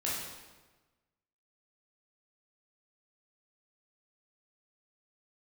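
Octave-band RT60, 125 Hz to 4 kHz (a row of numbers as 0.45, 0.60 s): 1.5, 1.3, 1.3, 1.2, 1.1, 1.0 s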